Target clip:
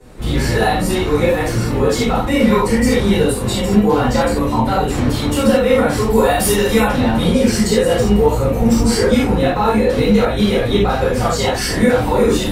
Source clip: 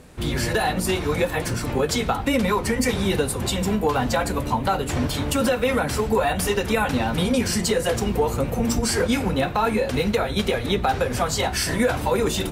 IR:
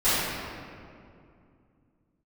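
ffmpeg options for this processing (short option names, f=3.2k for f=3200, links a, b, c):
-filter_complex "[0:a]asettb=1/sr,asplit=3[a][b][c];[a]atrim=end=6.094[d];[b]atrim=start=6.09:end=6.79,asetpts=PTS-STARTPTS,afade=t=in:d=0.004:c=qsin,afade=t=out:st=0.696:d=0.004:c=qsin,highshelf=f=5.2k:g=10[e];[c]atrim=start=6.786[f];[d][e]acrossfade=d=0.004:c1=hsin:c2=qsin[g];[g][f]acrossfade=d=0.004:c1=qsin:c2=hsin,acrossover=split=110|510|5100[h][i][j][k];[i]acontrast=32[l];[h][l][j][k]amix=inputs=4:normalize=0[m];[1:a]atrim=start_sample=2205,afade=t=out:st=0.15:d=0.01,atrim=end_sample=7056[n];[m][n]afir=irnorm=-1:irlink=0,volume=-9.5dB"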